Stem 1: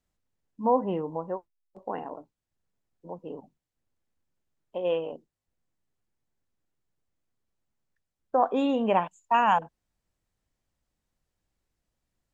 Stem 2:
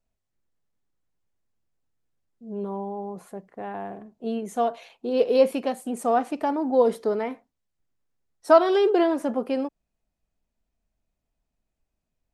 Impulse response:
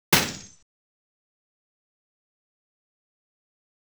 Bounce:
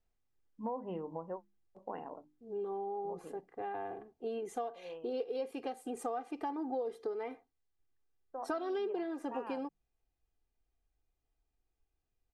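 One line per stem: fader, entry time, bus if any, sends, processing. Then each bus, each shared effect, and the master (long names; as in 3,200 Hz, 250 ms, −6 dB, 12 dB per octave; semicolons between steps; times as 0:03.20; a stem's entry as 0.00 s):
0:03.24 −7.5 dB → 0:03.45 −19 dB, 0.00 s, no send, mains-hum notches 50/100/150/200/250/300/350 Hz
−6.5 dB, 0.00 s, no send, comb filter 2.5 ms, depth 75%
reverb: not used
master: high-shelf EQ 6,800 Hz −8 dB; downward compressor 6 to 1, threshold −35 dBFS, peak gain reduction 16 dB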